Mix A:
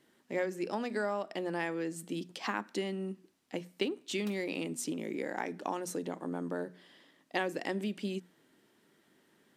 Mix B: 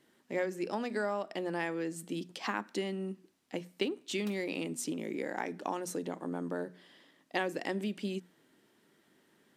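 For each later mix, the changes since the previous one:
none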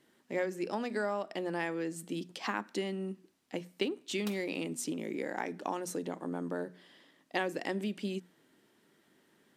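background +7.0 dB

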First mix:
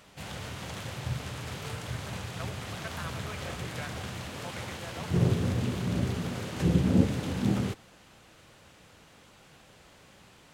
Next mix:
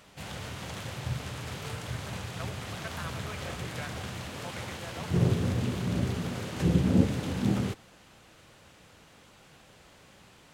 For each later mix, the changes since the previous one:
none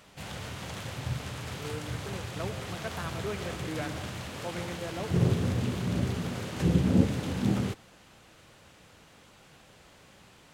speech: remove HPF 850 Hz

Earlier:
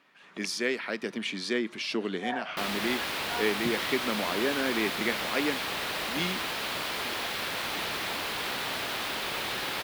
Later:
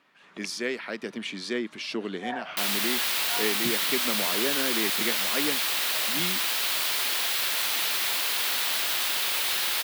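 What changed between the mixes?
second sound: add tilt +4 dB/oct; reverb: off

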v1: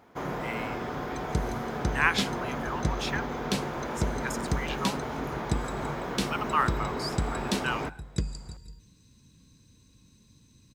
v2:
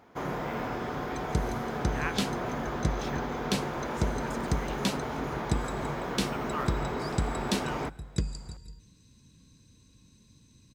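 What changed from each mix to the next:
speech -11.0 dB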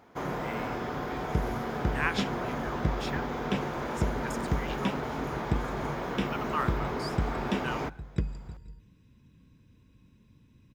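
speech +5.0 dB; second sound: add polynomial smoothing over 25 samples

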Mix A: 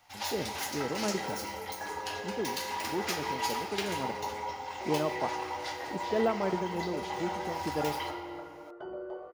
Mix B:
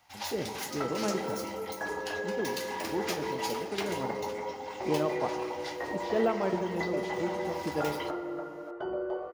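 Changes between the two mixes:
speech: send +6.0 dB; first sound: send -10.0 dB; second sound +6.5 dB

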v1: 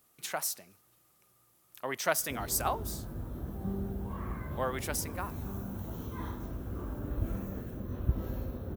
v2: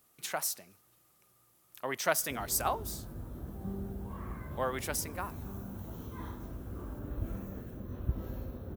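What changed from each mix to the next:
background -3.5 dB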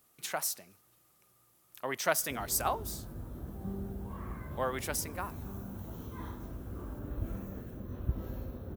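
none

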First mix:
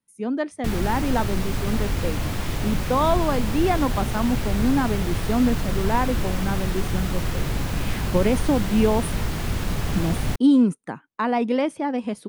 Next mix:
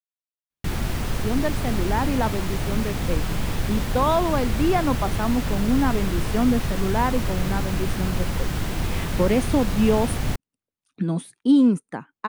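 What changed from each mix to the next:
speech: entry +1.05 s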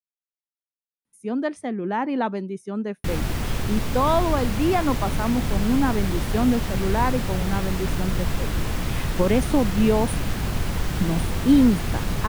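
background: entry +2.40 s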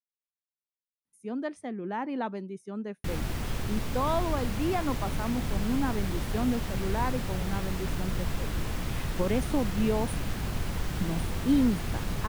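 speech -8.0 dB; background -6.5 dB

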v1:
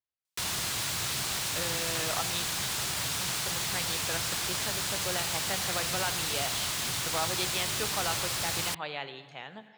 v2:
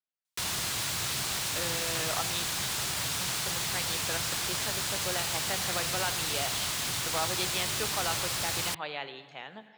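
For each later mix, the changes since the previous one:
speech: add BPF 160–7300 Hz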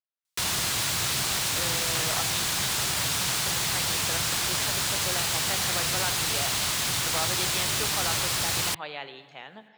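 background +5.0 dB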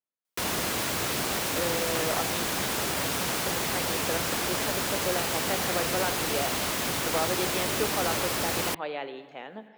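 master: add graphic EQ 125/250/500/4000/8000 Hz -6/+8/+7/-5/-5 dB

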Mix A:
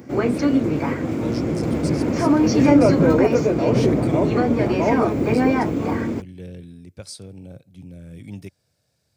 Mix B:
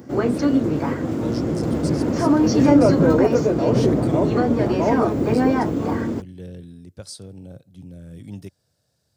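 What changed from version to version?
master: add bell 2300 Hz -9 dB 0.33 oct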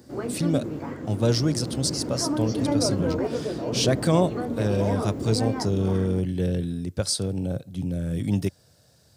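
speech +11.5 dB; background -10.5 dB

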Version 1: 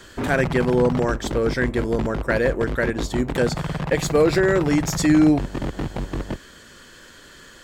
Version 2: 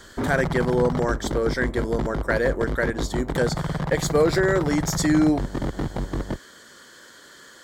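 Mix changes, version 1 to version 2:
speech: add HPF 350 Hz 6 dB/oct; master: add bell 2600 Hz -12.5 dB 0.27 oct

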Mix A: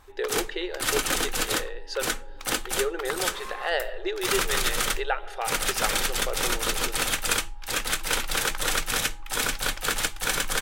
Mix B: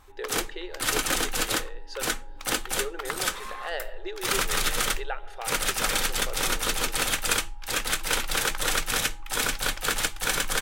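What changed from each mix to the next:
speech -6.5 dB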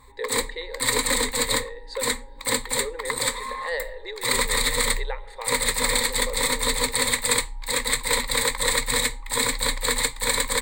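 master: add ripple EQ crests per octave 0.99, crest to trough 18 dB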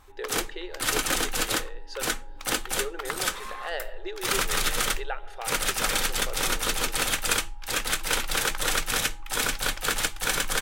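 master: remove ripple EQ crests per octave 0.99, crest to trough 18 dB

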